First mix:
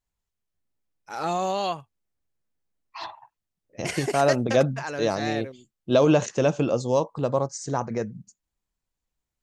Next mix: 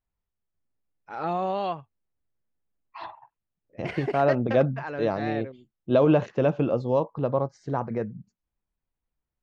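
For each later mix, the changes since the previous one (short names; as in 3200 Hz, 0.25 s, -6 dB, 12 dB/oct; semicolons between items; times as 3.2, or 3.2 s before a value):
master: add air absorption 380 m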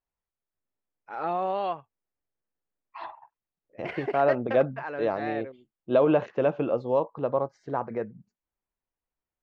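master: add tone controls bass -10 dB, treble -11 dB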